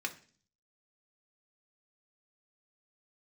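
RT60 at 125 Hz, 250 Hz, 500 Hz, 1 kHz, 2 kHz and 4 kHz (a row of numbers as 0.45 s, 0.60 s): 0.75 s, 0.65 s, 0.45 s, 0.40 s, 0.45 s, 0.55 s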